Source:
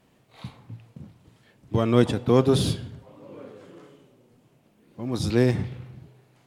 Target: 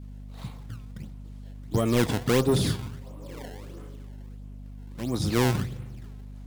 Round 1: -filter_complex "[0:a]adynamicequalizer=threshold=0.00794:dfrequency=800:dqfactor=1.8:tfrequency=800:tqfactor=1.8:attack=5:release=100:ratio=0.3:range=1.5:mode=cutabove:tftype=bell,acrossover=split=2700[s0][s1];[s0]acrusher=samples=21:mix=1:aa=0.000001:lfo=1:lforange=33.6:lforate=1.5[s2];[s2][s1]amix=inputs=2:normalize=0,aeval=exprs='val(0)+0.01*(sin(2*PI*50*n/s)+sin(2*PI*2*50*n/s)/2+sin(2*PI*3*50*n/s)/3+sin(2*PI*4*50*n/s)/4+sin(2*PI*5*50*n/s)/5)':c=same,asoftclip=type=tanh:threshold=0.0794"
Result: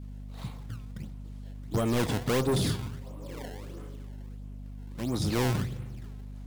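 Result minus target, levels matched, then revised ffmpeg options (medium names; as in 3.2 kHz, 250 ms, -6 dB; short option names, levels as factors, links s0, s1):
saturation: distortion +6 dB
-filter_complex "[0:a]adynamicequalizer=threshold=0.00794:dfrequency=800:dqfactor=1.8:tfrequency=800:tqfactor=1.8:attack=5:release=100:ratio=0.3:range=1.5:mode=cutabove:tftype=bell,acrossover=split=2700[s0][s1];[s0]acrusher=samples=21:mix=1:aa=0.000001:lfo=1:lforange=33.6:lforate=1.5[s2];[s2][s1]amix=inputs=2:normalize=0,aeval=exprs='val(0)+0.01*(sin(2*PI*50*n/s)+sin(2*PI*2*50*n/s)/2+sin(2*PI*3*50*n/s)/3+sin(2*PI*4*50*n/s)/4+sin(2*PI*5*50*n/s)/5)':c=same,asoftclip=type=tanh:threshold=0.188"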